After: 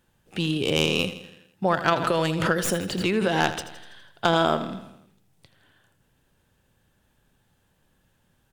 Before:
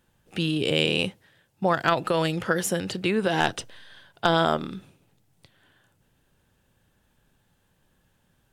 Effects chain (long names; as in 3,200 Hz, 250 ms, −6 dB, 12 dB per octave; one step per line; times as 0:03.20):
stylus tracing distortion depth 0.04 ms
repeating echo 82 ms, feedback 55%, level −13 dB
0:01.96–0:03.53: background raised ahead of every attack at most 56 dB per second